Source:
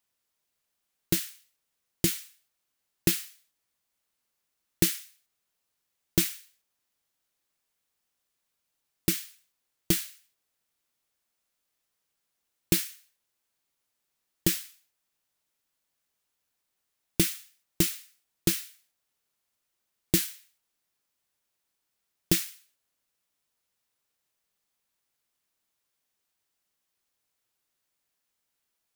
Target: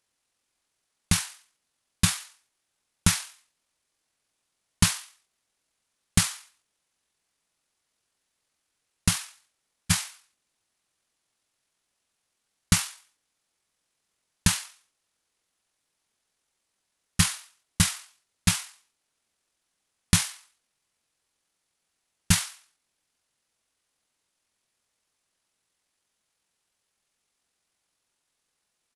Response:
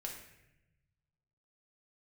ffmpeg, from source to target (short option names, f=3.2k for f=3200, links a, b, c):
-af "asetrate=23361,aresample=44100,atempo=1.88775,volume=3dB"